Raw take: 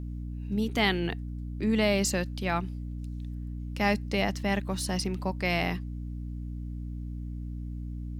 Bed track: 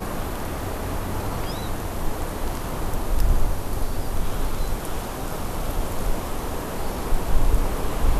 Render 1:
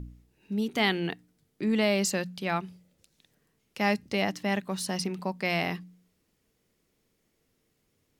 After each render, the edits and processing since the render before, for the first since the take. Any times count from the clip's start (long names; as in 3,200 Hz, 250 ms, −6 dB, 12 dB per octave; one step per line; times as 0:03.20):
hum removal 60 Hz, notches 5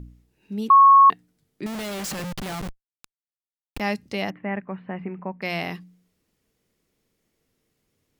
0:00.70–0:01.10: beep over 1,100 Hz −8.5 dBFS
0:01.66–0:03.80: comparator with hysteresis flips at −40.5 dBFS
0:04.30–0:05.42: Butterworth low-pass 2,400 Hz 48 dB per octave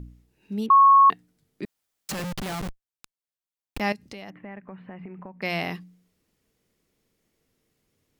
0:00.66–0:01.10: high-frequency loss of the air 450 metres
0:01.65–0:02.09: fill with room tone
0:03.92–0:05.38: downward compressor, threshold −37 dBFS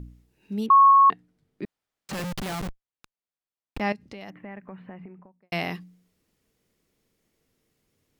0:00.91–0:02.13: low-pass filter 2,300 Hz 6 dB per octave
0:02.67–0:04.21: low-pass filter 2,700 Hz 6 dB per octave
0:04.79–0:05.52: fade out and dull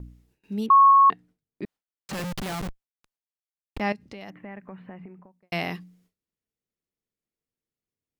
noise gate with hold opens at −56 dBFS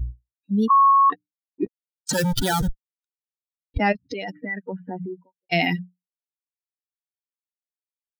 spectral dynamics exaggerated over time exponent 3
envelope flattener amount 70%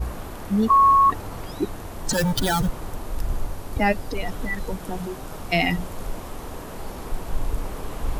mix in bed track −6.5 dB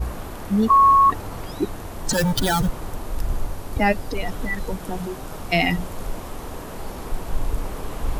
level +1.5 dB